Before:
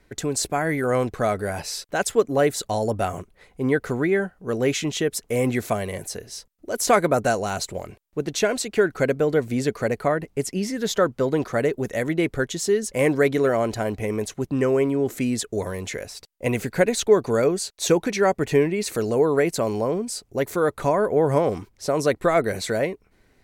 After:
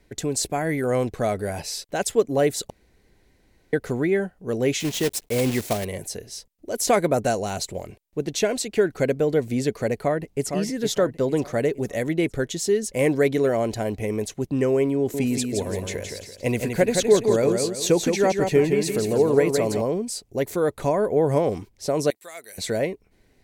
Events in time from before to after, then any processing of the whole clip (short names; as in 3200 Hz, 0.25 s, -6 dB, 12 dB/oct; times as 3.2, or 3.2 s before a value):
2.7–3.73 room tone
4.8–5.86 block floating point 3-bit
9.98–10.48 echo throw 0.46 s, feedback 45%, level -7 dB
14.97–19.82 feedback echo 0.168 s, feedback 34%, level -5 dB
22.1–22.58 differentiator
whole clip: bell 1300 Hz -7.5 dB 0.86 oct